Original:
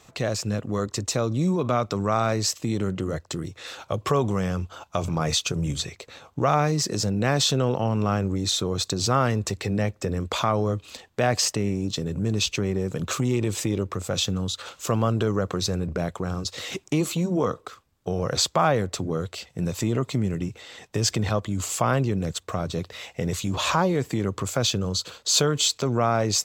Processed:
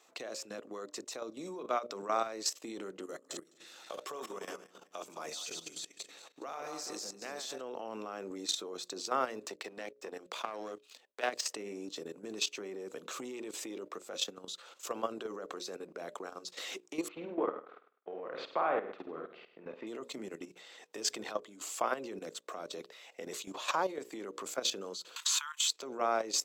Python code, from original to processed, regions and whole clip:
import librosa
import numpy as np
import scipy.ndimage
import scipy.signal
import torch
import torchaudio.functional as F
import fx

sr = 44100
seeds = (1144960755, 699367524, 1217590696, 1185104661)

y = fx.chain(x, sr, fx.reverse_delay_fb(ms=103, feedback_pct=55, wet_db=-6.0),
    fx.high_shelf(hz=4400.0, db=9.0),
    fx.level_steps(step_db=15), at=(3.03, 7.61))
y = fx.chain(y, sr, fx.peak_eq(hz=3700.0, db=4.5, octaves=2.6),
    fx.power_curve(exponent=1.4),
    fx.band_squash(depth_pct=40), at=(9.46, 11.45))
y = fx.chain(y, sr, fx.law_mismatch(coded='A'),
    fx.lowpass(hz=2600.0, slope=24),
    fx.room_flutter(wall_m=8.7, rt60_s=0.54), at=(17.08, 19.87))
y = fx.chain(y, sr, fx.brickwall_highpass(low_hz=880.0),
    fx.peak_eq(hz=4700.0, db=-8.5, octaves=0.57),
    fx.band_squash(depth_pct=100), at=(25.16, 25.68))
y = scipy.signal.sosfilt(scipy.signal.butter(4, 300.0, 'highpass', fs=sr, output='sos'), y)
y = fx.hum_notches(y, sr, base_hz=60, count=10)
y = fx.level_steps(y, sr, step_db=12)
y = F.gain(torch.from_numpy(y), -6.0).numpy()